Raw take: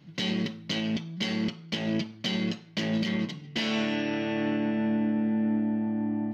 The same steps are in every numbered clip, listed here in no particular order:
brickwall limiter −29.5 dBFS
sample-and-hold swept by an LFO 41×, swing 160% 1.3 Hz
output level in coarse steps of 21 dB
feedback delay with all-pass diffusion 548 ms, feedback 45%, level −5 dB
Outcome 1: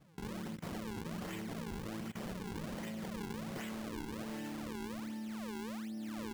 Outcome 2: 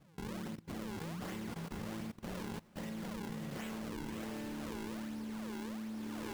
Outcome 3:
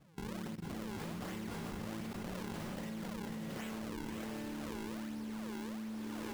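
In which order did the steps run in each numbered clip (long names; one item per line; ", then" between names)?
feedback delay with all-pass diffusion, then brickwall limiter, then output level in coarse steps, then sample-and-hold swept by an LFO
brickwall limiter, then sample-and-hold swept by an LFO, then feedback delay with all-pass diffusion, then output level in coarse steps
sample-and-hold swept by an LFO, then feedback delay with all-pass diffusion, then output level in coarse steps, then brickwall limiter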